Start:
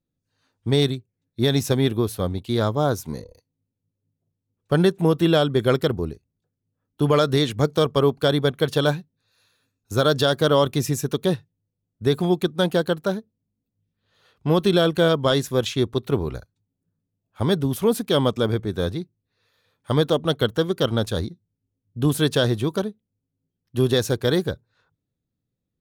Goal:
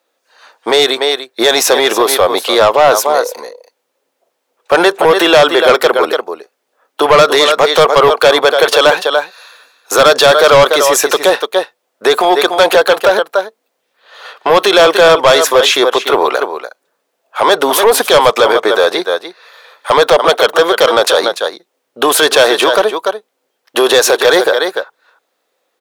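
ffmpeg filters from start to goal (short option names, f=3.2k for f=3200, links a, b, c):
-filter_complex "[0:a]highpass=f=550:w=0.5412,highpass=f=550:w=1.3066,highshelf=f=4k:g=-9.5,aecho=1:1:291:0.2,acrossover=split=1400[a][b];[a]crystalizer=i=5.5:c=0[c];[c][b]amix=inputs=2:normalize=0,asoftclip=type=tanh:threshold=-22.5dB,alimiter=level_in=31dB:limit=-1dB:release=50:level=0:latency=1,volume=-1dB"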